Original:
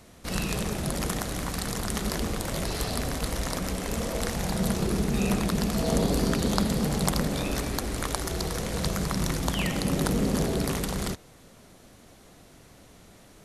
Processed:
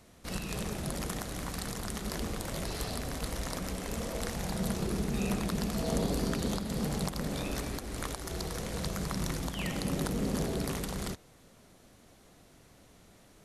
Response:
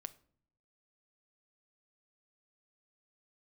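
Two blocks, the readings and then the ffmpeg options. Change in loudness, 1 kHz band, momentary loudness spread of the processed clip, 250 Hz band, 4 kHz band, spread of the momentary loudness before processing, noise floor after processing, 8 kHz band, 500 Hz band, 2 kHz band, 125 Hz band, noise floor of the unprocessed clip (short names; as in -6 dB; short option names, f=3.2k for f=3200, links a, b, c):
-6.5 dB, -7.0 dB, 6 LU, -6.5 dB, -6.5 dB, 5 LU, -59 dBFS, -6.5 dB, -6.5 dB, -6.5 dB, -6.5 dB, -53 dBFS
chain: -af "alimiter=limit=-12.5dB:level=0:latency=1:release=207,volume=-6dB"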